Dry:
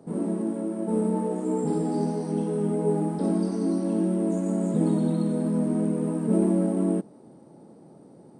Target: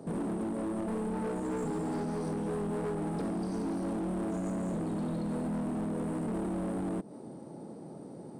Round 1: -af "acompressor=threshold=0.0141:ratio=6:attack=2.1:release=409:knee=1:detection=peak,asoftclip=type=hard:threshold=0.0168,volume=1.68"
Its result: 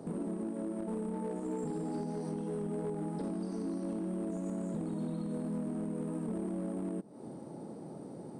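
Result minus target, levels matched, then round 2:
compression: peak gain reduction +6.5 dB
-af "acompressor=threshold=0.0335:ratio=6:attack=2.1:release=409:knee=1:detection=peak,asoftclip=type=hard:threshold=0.0168,volume=1.68"

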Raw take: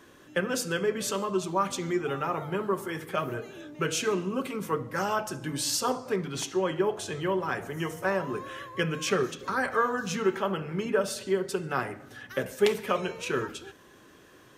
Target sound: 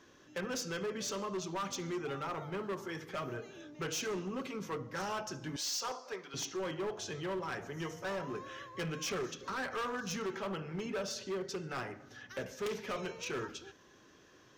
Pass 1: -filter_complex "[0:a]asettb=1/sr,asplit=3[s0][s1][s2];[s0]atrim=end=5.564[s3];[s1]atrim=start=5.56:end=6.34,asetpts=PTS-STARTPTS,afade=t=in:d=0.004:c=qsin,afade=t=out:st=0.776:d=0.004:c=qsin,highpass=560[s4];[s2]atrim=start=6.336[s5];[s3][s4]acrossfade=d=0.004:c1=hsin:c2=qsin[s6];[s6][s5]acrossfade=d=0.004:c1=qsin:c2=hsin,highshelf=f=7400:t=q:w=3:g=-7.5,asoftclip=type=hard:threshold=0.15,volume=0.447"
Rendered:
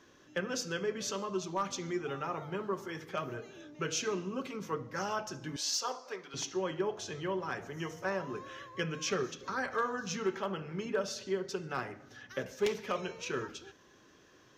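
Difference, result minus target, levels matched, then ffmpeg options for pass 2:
hard clipper: distortion -17 dB
-filter_complex "[0:a]asettb=1/sr,asplit=3[s0][s1][s2];[s0]atrim=end=5.564[s3];[s1]atrim=start=5.56:end=6.34,asetpts=PTS-STARTPTS,afade=t=in:d=0.004:c=qsin,afade=t=out:st=0.776:d=0.004:c=qsin,highpass=560[s4];[s2]atrim=start=6.336[s5];[s3][s4]acrossfade=d=0.004:c1=hsin:c2=qsin[s6];[s6][s5]acrossfade=d=0.004:c1=qsin:c2=hsin,highshelf=f=7400:t=q:w=3:g=-7.5,asoftclip=type=hard:threshold=0.0473,volume=0.447"

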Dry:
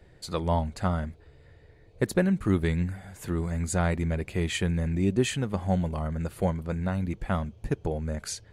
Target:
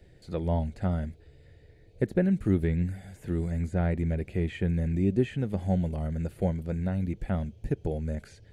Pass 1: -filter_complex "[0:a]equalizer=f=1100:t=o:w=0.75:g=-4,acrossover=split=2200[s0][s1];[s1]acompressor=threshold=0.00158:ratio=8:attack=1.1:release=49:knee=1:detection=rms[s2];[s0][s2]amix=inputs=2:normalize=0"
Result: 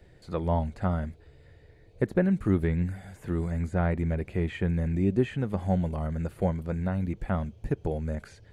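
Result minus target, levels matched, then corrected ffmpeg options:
1 kHz band +4.5 dB
-filter_complex "[0:a]equalizer=f=1100:t=o:w=0.75:g=-15,acrossover=split=2200[s0][s1];[s1]acompressor=threshold=0.00158:ratio=8:attack=1.1:release=49:knee=1:detection=rms[s2];[s0][s2]amix=inputs=2:normalize=0"

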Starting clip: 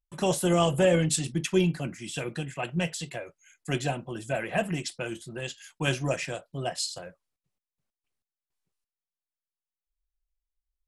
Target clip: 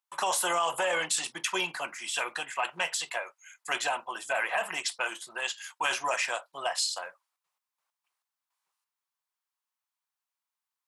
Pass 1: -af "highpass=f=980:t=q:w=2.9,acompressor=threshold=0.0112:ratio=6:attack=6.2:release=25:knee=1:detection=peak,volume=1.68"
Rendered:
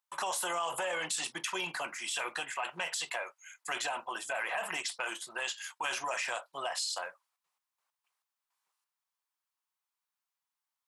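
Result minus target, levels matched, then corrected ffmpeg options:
compression: peak gain reduction +6.5 dB
-af "highpass=f=980:t=q:w=2.9,acompressor=threshold=0.0266:ratio=6:attack=6.2:release=25:knee=1:detection=peak,volume=1.68"

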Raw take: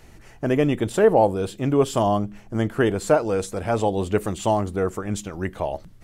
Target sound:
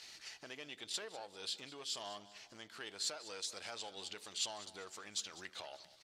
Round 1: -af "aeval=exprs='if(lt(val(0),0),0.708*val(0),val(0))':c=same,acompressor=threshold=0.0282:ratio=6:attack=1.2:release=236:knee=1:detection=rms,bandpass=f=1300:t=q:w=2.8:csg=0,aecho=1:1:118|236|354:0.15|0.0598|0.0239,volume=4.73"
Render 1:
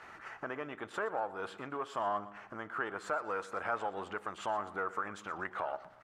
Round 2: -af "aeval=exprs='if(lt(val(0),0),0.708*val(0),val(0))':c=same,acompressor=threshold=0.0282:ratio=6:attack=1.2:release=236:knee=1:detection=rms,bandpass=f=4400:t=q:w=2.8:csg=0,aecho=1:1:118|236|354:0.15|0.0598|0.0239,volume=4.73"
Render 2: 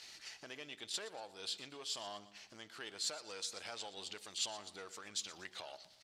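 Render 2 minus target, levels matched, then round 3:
echo 79 ms early
-af "aeval=exprs='if(lt(val(0),0),0.708*val(0),val(0))':c=same,acompressor=threshold=0.0282:ratio=6:attack=1.2:release=236:knee=1:detection=rms,bandpass=f=4400:t=q:w=2.8:csg=0,aecho=1:1:197|394|591:0.15|0.0598|0.0239,volume=4.73"

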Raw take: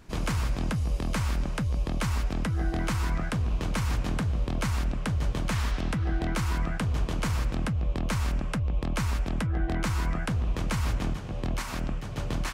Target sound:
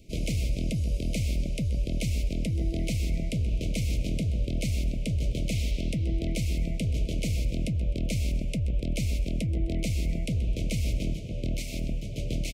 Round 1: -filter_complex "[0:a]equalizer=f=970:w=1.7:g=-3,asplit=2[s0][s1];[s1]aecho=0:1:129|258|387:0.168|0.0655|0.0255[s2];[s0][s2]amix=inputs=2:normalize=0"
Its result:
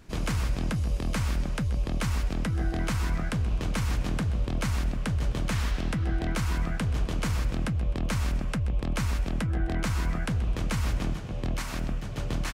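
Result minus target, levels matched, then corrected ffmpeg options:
1 kHz band +17.5 dB
-filter_complex "[0:a]asuperstop=centerf=1200:order=20:qfactor=0.82,equalizer=f=970:w=1.7:g=-3,asplit=2[s0][s1];[s1]aecho=0:1:129|258|387:0.168|0.0655|0.0255[s2];[s0][s2]amix=inputs=2:normalize=0"

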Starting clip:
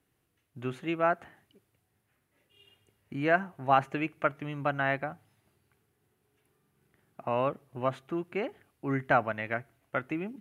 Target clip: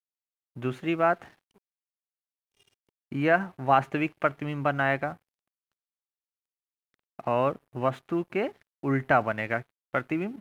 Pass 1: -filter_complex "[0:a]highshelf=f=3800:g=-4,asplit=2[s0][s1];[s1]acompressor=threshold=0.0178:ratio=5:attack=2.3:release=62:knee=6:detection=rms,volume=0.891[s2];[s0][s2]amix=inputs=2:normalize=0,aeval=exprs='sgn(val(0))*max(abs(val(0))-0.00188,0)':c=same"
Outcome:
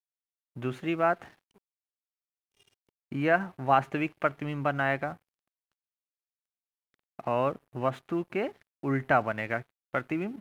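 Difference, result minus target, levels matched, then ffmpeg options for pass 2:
compression: peak gain reduction +8.5 dB
-filter_complex "[0:a]highshelf=f=3800:g=-4,asplit=2[s0][s1];[s1]acompressor=threshold=0.0596:ratio=5:attack=2.3:release=62:knee=6:detection=rms,volume=0.891[s2];[s0][s2]amix=inputs=2:normalize=0,aeval=exprs='sgn(val(0))*max(abs(val(0))-0.00188,0)':c=same"

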